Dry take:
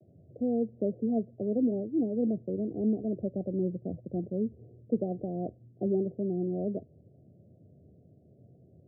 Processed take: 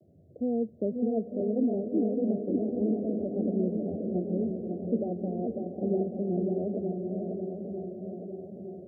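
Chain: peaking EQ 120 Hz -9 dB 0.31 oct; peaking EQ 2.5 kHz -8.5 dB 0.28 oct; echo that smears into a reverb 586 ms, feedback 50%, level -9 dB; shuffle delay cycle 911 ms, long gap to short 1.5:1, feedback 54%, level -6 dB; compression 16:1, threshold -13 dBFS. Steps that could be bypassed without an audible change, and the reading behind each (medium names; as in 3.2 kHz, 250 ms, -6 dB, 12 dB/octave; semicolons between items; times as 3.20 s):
peaking EQ 2.5 kHz: input has nothing above 760 Hz; compression, threshold -13 dBFS: peak at its input -16.0 dBFS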